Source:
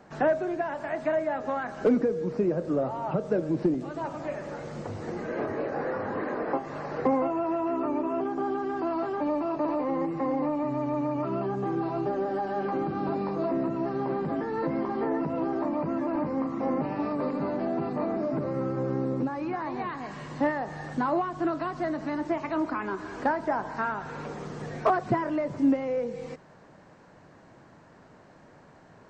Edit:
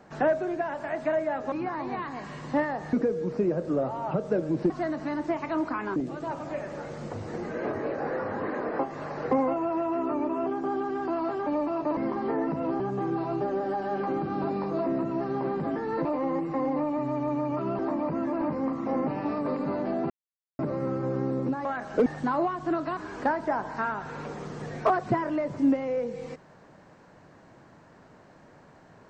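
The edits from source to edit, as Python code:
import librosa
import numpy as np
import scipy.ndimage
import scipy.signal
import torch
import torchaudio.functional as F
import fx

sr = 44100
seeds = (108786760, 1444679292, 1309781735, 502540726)

y = fx.edit(x, sr, fx.swap(start_s=1.52, length_s=0.41, other_s=19.39, other_length_s=1.41),
    fx.swap(start_s=9.71, length_s=1.74, other_s=14.7, other_length_s=0.83),
    fx.silence(start_s=17.84, length_s=0.49),
    fx.move(start_s=21.71, length_s=1.26, to_s=3.7), tone=tone)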